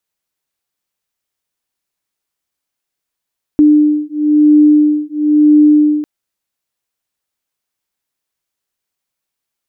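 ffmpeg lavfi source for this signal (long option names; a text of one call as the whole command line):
ffmpeg -f lavfi -i "aevalsrc='0.335*(sin(2*PI*299*t)+sin(2*PI*300*t))':duration=2.45:sample_rate=44100" out.wav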